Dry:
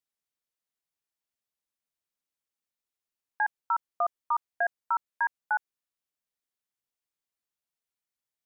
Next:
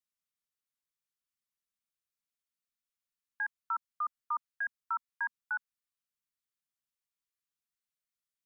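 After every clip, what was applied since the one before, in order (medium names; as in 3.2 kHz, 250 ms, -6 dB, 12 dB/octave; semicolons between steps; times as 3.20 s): Chebyshev band-stop 240–1100 Hz, order 3; trim -3.5 dB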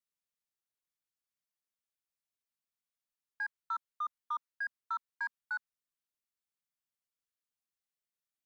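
dynamic bell 1.4 kHz, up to +3 dB, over -43 dBFS, Q 0.89; in parallel at -5 dB: saturation -31 dBFS, distortion -13 dB; on the sum: trim -7.5 dB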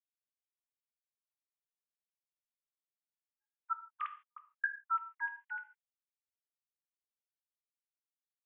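formants replaced by sine waves; trance gate "x..xx.xxx" 165 bpm -60 dB; gated-style reverb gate 180 ms falling, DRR 6.5 dB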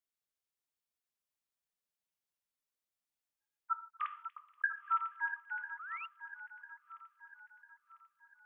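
backward echo that repeats 499 ms, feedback 64%, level -9.5 dB; feedback echo behind a high-pass 239 ms, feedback 37%, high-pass 3.1 kHz, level -12 dB; painted sound rise, 5.79–6.06 s, 1.2–2.9 kHz -47 dBFS; trim +1 dB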